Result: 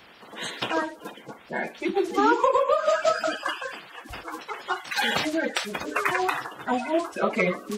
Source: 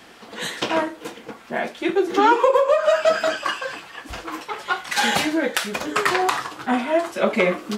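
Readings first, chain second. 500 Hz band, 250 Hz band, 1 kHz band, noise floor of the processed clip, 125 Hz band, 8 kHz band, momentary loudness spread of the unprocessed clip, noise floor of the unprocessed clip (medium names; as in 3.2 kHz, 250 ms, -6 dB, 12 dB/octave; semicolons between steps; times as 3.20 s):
-5.5 dB, -4.5 dB, -4.0 dB, -49 dBFS, -3.0 dB, -7.0 dB, 15 LU, -45 dBFS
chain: coarse spectral quantiser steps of 30 dB; trim -4 dB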